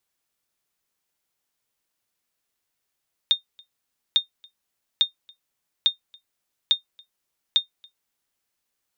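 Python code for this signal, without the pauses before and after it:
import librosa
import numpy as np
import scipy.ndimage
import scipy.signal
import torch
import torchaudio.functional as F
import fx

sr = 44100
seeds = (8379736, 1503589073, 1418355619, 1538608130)

y = fx.sonar_ping(sr, hz=3660.0, decay_s=0.12, every_s=0.85, pings=6, echo_s=0.28, echo_db=-29.5, level_db=-9.0)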